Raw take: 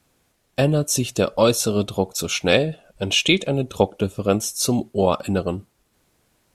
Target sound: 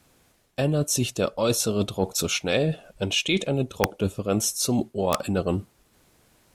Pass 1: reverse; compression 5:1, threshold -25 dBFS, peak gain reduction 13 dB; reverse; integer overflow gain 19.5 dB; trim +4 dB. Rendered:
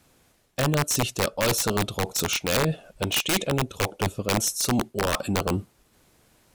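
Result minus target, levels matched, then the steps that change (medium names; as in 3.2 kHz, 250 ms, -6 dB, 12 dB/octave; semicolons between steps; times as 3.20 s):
integer overflow: distortion +18 dB
change: integer overflow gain 12.5 dB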